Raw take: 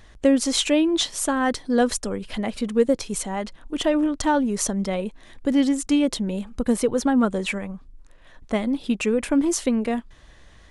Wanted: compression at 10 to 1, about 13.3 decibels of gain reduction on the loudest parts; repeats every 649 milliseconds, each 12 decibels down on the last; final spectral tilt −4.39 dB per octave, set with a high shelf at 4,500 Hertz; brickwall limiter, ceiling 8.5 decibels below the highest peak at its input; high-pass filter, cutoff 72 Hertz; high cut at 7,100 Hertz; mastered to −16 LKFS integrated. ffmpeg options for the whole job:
ffmpeg -i in.wav -af "highpass=72,lowpass=7100,highshelf=frequency=4500:gain=-4,acompressor=threshold=-27dB:ratio=10,alimiter=level_in=1.5dB:limit=-24dB:level=0:latency=1,volume=-1.5dB,aecho=1:1:649|1298|1947:0.251|0.0628|0.0157,volume=18dB" out.wav

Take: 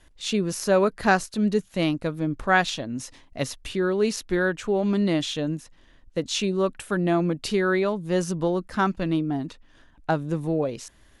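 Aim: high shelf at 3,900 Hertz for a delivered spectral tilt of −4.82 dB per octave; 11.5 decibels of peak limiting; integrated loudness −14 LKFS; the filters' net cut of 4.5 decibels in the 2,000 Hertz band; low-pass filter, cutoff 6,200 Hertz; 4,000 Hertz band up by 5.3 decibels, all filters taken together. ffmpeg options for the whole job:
ffmpeg -i in.wav -af "lowpass=6200,equalizer=frequency=2000:width_type=o:gain=-9,highshelf=frequency=3900:gain=5,equalizer=frequency=4000:width_type=o:gain=7,volume=15dB,alimiter=limit=-4dB:level=0:latency=1" out.wav

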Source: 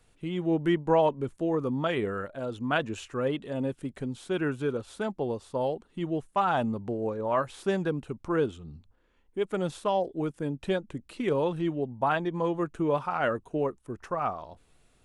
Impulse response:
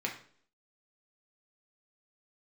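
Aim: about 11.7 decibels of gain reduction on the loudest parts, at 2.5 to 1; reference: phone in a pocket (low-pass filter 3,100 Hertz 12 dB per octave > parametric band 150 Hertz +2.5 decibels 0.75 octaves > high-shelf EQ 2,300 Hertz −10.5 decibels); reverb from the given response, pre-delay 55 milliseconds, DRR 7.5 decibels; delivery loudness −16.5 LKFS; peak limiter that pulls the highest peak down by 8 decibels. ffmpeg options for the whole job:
-filter_complex "[0:a]acompressor=threshold=-37dB:ratio=2.5,alimiter=level_in=6.5dB:limit=-24dB:level=0:latency=1,volume=-6.5dB,asplit=2[link_01][link_02];[1:a]atrim=start_sample=2205,adelay=55[link_03];[link_02][link_03]afir=irnorm=-1:irlink=0,volume=-12dB[link_04];[link_01][link_04]amix=inputs=2:normalize=0,lowpass=3100,equalizer=frequency=150:width_type=o:width=0.75:gain=2.5,highshelf=frequency=2300:gain=-10.5,volume=23.5dB"

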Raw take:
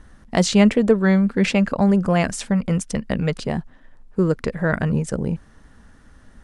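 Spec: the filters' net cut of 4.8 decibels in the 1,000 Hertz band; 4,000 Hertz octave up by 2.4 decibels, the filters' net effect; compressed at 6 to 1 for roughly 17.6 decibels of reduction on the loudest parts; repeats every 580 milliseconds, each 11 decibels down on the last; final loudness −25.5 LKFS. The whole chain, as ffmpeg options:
ffmpeg -i in.wav -af "equalizer=frequency=1000:width_type=o:gain=-7.5,equalizer=frequency=4000:width_type=o:gain=3.5,acompressor=threshold=-30dB:ratio=6,aecho=1:1:580|1160|1740:0.282|0.0789|0.0221,volume=8dB" out.wav

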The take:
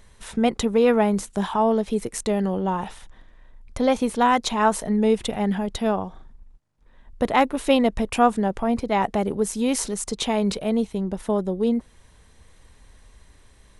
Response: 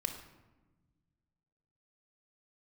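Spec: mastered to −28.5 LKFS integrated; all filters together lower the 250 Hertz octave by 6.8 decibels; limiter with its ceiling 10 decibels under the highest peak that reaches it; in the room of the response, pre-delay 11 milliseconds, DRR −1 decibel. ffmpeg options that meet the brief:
-filter_complex "[0:a]equalizer=frequency=250:width_type=o:gain=-8,alimiter=limit=-16dB:level=0:latency=1,asplit=2[link_01][link_02];[1:a]atrim=start_sample=2205,adelay=11[link_03];[link_02][link_03]afir=irnorm=-1:irlink=0,volume=0dB[link_04];[link_01][link_04]amix=inputs=2:normalize=0,volume=-4.5dB"

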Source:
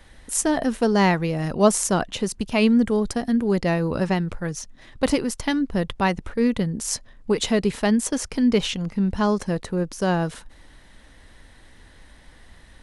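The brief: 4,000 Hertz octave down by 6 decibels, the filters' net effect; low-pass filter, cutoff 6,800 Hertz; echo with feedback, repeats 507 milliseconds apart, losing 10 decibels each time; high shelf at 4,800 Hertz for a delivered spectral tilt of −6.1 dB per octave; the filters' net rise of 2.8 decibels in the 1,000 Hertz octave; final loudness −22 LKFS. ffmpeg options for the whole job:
ffmpeg -i in.wav -af "lowpass=6800,equalizer=frequency=1000:width_type=o:gain=4,equalizer=frequency=4000:width_type=o:gain=-6,highshelf=frequency=4800:gain=-4.5,aecho=1:1:507|1014|1521|2028:0.316|0.101|0.0324|0.0104,volume=0.5dB" out.wav

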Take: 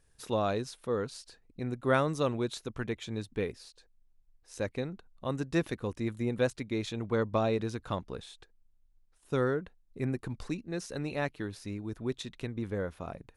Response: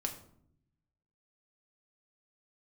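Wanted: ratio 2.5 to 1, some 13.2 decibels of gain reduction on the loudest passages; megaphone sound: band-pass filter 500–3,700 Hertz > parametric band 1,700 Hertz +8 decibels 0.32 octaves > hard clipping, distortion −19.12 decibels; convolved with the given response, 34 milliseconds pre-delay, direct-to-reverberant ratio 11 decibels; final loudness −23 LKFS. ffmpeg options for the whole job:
-filter_complex "[0:a]acompressor=threshold=-43dB:ratio=2.5,asplit=2[link_01][link_02];[1:a]atrim=start_sample=2205,adelay=34[link_03];[link_02][link_03]afir=irnorm=-1:irlink=0,volume=-12dB[link_04];[link_01][link_04]amix=inputs=2:normalize=0,highpass=500,lowpass=3700,equalizer=frequency=1700:width_type=o:width=0.32:gain=8,asoftclip=type=hard:threshold=-34.5dB,volume=25dB"

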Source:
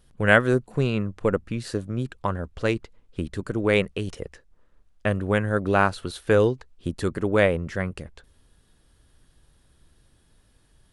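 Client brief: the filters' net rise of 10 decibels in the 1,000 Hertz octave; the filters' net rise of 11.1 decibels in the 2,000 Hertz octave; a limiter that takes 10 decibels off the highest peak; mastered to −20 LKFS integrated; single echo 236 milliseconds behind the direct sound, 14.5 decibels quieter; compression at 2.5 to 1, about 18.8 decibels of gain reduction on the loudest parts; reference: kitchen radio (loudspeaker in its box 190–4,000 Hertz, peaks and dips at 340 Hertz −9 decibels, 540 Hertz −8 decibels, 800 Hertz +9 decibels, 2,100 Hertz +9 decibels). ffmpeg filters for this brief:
ffmpeg -i in.wav -af "equalizer=frequency=1000:width_type=o:gain=6.5,equalizer=frequency=2000:width_type=o:gain=7.5,acompressor=threshold=-35dB:ratio=2.5,alimiter=limit=-23.5dB:level=0:latency=1,highpass=190,equalizer=frequency=340:width_type=q:width=4:gain=-9,equalizer=frequency=540:width_type=q:width=4:gain=-8,equalizer=frequency=800:width_type=q:width=4:gain=9,equalizer=frequency=2100:width_type=q:width=4:gain=9,lowpass=frequency=4000:width=0.5412,lowpass=frequency=4000:width=1.3066,aecho=1:1:236:0.188,volume=17.5dB" out.wav

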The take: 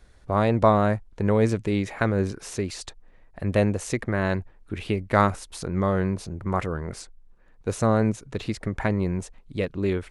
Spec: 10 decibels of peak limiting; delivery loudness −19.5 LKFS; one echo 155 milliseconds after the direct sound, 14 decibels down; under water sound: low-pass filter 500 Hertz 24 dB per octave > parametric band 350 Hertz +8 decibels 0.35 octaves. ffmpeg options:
ffmpeg -i in.wav -af "alimiter=limit=-14.5dB:level=0:latency=1,lowpass=frequency=500:width=0.5412,lowpass=frequency=500:width=1.3066,equalizer=frequency=350:width_type=o:width=0.35:gain=8,aecho=1:1:155:0.2,volume=8dB" out.wav

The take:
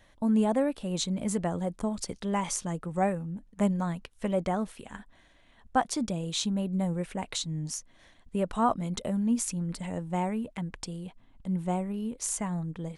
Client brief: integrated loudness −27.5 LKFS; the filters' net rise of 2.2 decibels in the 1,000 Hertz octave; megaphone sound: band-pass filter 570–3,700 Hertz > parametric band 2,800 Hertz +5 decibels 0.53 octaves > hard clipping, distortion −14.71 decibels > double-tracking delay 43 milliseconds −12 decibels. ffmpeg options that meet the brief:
ffmpeg -i in.wav -filter_complex "[0:a]highpass=570,lowpass=3700,equalizer=frequency=1000:width_type=o:gain=4,equalizer=frequency=2800:width_type=o:width=0.53:gain=5,asoftclip=type=hard:threshold=-19dB,asplit=2[link_01][link_02];[link_02]adelay=43,volume=-12dB[link_03];[link_01][link_03]amix=inputs=2:normalize=0,volume=7.5dB" out.wav

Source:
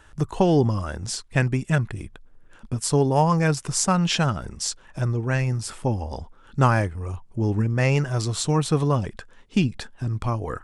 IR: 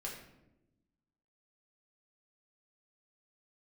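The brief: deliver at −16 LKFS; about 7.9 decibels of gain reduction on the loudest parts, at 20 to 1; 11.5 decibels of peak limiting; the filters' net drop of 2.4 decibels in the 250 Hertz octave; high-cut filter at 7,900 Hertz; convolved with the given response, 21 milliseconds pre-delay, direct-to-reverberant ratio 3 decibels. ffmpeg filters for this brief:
-filter_complex "[0:a]lowpass=7900,equalizer=frequency=250:width_type=o:gain=-4,acompressor=threshold=-22dB:ratio=20,alimiter=limit=-21dB:level=0:latency=1,asplit=2[link_01][link_02];[1:a]atrim=start_sample=2205,adelay=21[link_03];[link_02][link_03]afir=irnorm=-1:irlink=0,volume=-2.5dB[link_04];[link_01][link_04]amix=inputs=2:normalize=0,volume=14dB"

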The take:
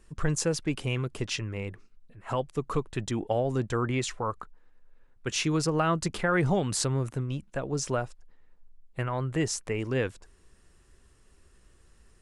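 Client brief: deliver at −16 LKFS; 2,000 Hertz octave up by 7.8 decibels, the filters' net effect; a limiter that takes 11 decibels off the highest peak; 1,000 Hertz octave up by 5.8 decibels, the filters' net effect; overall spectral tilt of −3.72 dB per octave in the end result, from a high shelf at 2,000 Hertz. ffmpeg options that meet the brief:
ffmpeg -i in.wav -af "equalizer=frequency=1000:width_type=o:gain=4,highshelf=frequency=2000:gain=8,equalizer=frequency=2000:width_type=o:gain=4,volume=11.5dB,alimiter=limit=-4dB:level=0:latency=1" out.wav

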